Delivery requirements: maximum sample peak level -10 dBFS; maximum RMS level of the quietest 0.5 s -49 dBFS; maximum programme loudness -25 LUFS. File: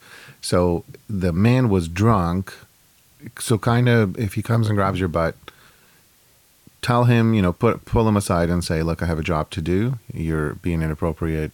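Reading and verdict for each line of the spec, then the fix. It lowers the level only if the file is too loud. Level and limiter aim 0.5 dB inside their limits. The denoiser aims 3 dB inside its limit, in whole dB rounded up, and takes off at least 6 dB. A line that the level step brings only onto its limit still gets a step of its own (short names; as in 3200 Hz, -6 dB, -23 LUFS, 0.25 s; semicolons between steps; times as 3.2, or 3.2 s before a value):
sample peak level -6.5 dBFS: fail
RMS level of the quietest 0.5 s -56 dBFS: OK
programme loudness -21.0 LUFS: fail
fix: gain -4.5 dB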